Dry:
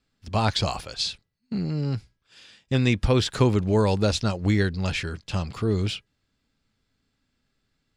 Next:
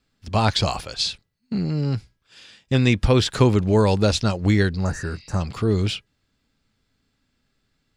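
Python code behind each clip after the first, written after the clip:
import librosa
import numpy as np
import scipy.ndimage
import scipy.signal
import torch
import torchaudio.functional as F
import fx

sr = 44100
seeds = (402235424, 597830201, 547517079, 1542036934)

y = fx.spec_repair(x, sr, seeds[0], start_s=4.83, length_s=0.55, low_hz=1900.0, high_hz=5500.0, source='before')
y = y * librosa.db_to_amplitude(3.5)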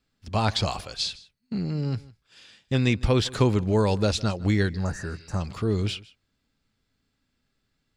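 y = x + 10.0 ** (-21.0 / 20.0) * np.pad(x, (int(156 * sr / 1000.0), 0))[:len(x)]
y = y * librosa.db_to_amplitude(-4.5)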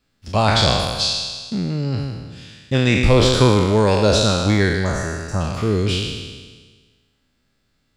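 y = fx.spec_trails(x, sr, decay_s=1.48)
y = fx.peak_eq(y, sr, hz=580.0, db=3.0, octaves=0.35)
y = y * librosa.db_to_amplitude(4.5)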